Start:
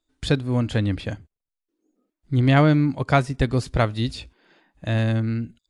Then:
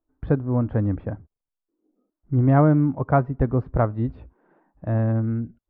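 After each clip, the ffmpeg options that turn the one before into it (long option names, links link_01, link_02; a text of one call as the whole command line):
ffmpeg -i in.wav -af "lowpass=frequency=1200:width=0.5412,lowpass=frequency=1200:width=1.3066,aemphasis=mode=production:type=75kf" out.wav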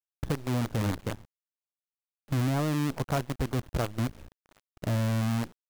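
ffmpeg -i in.wav -filter_complex "[0:a]asplit=2[link_01][link_02];[link_02]alimiter=limit=-15.5dB:level=0:latency=1:release=330,volume=-1dB[link_03];[link_01][link_03]amix=inputs=2:normalize=0,acompressor=threshold=-28dB:ratio=2,acrusher=bits=5:dc=4:mix=0:aa=0.000001,volume=-4.5dB" out.wav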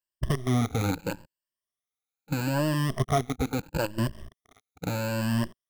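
ffmpeg -i in.wav -af "afftfilt=real='re*pow(10,17/40*sin(2*PI*(1.3*log(max(b,1)*sr/1024/100)/log(2)-(0.76)*(pts-256)/sr)))':imag='im*pow(10,17/40*sin(2*PI*(1.3*log(max(b,1)*sr/1024/100)/log(2)-(0.76)*(pts-256)/sr)))':win_size=1024:overlap=0.75" out.wav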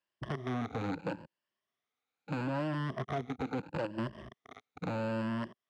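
ffmpeg -i in.wav -filter_complex "[0:a]acrossover=split=600|1300[link_01][link_02][link_03];[link_01]acompressor=threshold=-38dB:ratio=4[link_04];[link_02]acompressor=threshold=-48dB:ratio=4[link_05];[link_03]acompressor=threshold=-49dB:ratio=4[link_06];[link_04][link_05][link_06]amix=inputs=3:normalize=0,asoftclip=type=tanh:threshold=-37dB,highpass=140,lowpass=3100,volume=8.5dB" out.wav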